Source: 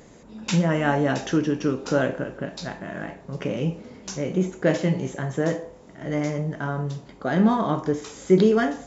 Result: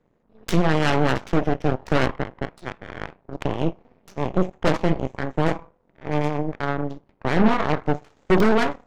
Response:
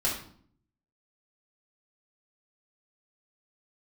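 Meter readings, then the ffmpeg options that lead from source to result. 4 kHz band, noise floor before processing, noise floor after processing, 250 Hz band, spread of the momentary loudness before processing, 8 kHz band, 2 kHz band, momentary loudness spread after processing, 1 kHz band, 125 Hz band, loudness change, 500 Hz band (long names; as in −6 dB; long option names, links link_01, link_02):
+3.0 dB, −48 dBFS, −64 dBFS, −0.5 dB, 14 LU, can't be measured, +3.0 dB, 16 LU, +4.0 dB, +0.5 dB, +1.0 dB, 0.0 dB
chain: -af "asoftclip=type=tanh:threshold=-9dB,adynamicsmooth=sensitivity=3.5:basefreq=2200,aeval=exprs='0.335*(cos(1*acos(clip(val(0)/0.335,-1,1)))-cos(1*PI/2))+0.0944*(cos(6*acos(clip(val(0)/0.335,-1,1)))-cos(6*PI/2))+0.0422*(cos(7*acos(clip(val(0)/0.335,-1,1)))-cos(7*PI/2))':channel_layout=same"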